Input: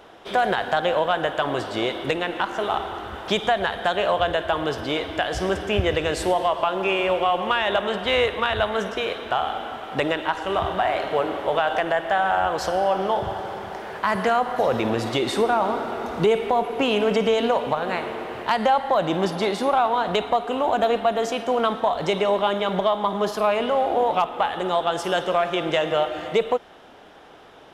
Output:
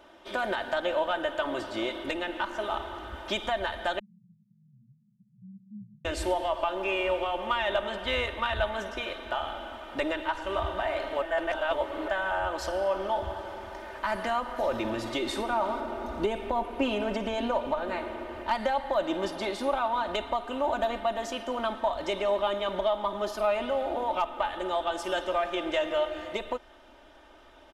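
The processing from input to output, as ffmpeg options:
ffmpeg -i in.wav -filter_complex "[0:a]asettb=1/sr,asplit=3[link_01][link_02][link_03];[link_01]atrim=end=3.994[link_04];[link_02]atrim=start=3.99:end=6.05,asetpts=PTS-STARTPTS,afade=type=in:duration=0.004:curve=qsin,afade=type=out:start_time=2.056:duration=0.004:curve=qsin,asuperpass=centerf=160:order=20:qfactor=1.6[link_05];[link_03]atrim=start=6.046[link_06];[link_04][link_05]acrossfade=duration=0.004:curve1=hsin:curve2=qsin[link_07];[link_07][link_06]acrossfade=duration=0.004:curve1=qsin:curve2=hsin,asettb=1/sr,asplit=3[link_08][link_09][link_10];[link_08]atrim=end=15.804[link_11];[link_09]atrim=start=15.8:end=18.55,asetpts=PTS-STARTPTS,afade=type=in:duration=0.004:curve=qsin,afade=type=out:start_time=2.746:duration=0.004:curve=qsin,tiltshelf=frequency=970:gain=3[link_12];[link_10]atrim=start=18.546[link_13];[link_11][link_12]acrossfade=duration=0.004:curve1=hsin:curve2=qsin[link_14];[link_14][link_13]acrossfade=duration=0.004:curve1=qsin:curve2=hsin,asplit=3[link_15][link_16][link_17];[link_15]atrim=end=11.222[link_18];[link_16]atrim=start=11.218:end=12.082,asetpts=PTS-STARTPTS,areverse[link_19];[link_17]atrim=start=12.078[link_20];[link_18][link_19]acrossfade=duration=0.004:curve1=hsin:curve2=hsin[link_21];[link_21][link_20]acrossfade=duration=0.004:curve1=hsin:curve2=hsin,asubboost=boost=5:cutoff=59,aecho=1:1:3.3:0.75,volume=-8.5dB" out.wav

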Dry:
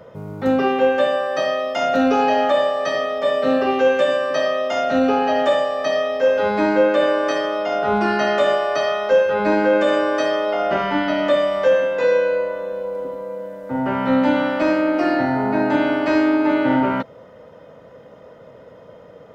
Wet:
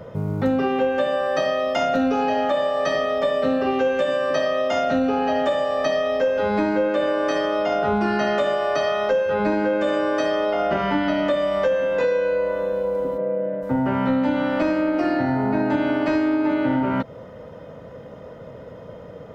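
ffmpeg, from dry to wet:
ffmpeg -i in.wav -filter_complex "[0:a]asplit=3[link_01][link_02][link_03];[link_01]afade=type=out:start_time=13.17:duration=0.02[link_04];[link_02]highpass=frequency=130:width=0.5412,highpass=frequency=130:width=1.3066,equalizer=frequency=140:width_type=q:width=4:gain=10,equalizer=frequency=350:width_type=q:width=4:gain=7,equalizer=frequency=610:width_type=q:width=4:gain=6,equalizer=frequency=1000:width_type=q:width=4:gain=-6,lowpass=frequency=2900:width=0.5412,lowpass=frequency=2900:width=1.3066,afade=type=in:start_time=13.17:duration=0.02,afade=type=out:start_time=13.61:duration=0.02[link_05];[link_03]afade=type=in:start_time=13.61:duration=0.02[link_06];[link_04][link_05][link_06]amix=inputs=3:normalize=0,lowshelf=frequency=210:gain=9.5,acompressor=threshold=-20dB:ratio=6,volume=2dB" out.wav

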